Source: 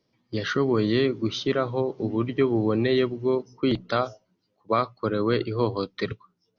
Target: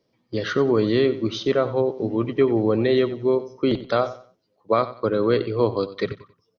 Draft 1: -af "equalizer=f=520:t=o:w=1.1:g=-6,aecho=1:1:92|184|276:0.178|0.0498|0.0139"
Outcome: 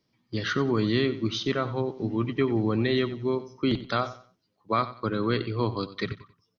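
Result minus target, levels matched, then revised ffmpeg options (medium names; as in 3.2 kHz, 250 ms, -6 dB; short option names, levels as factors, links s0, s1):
500 Hz band -3.5 dB
-af "equalizer=f=520:t=o:w=1.1:g=6,aecho=1:1:92|184|276:0.178|0.0498|0.0139"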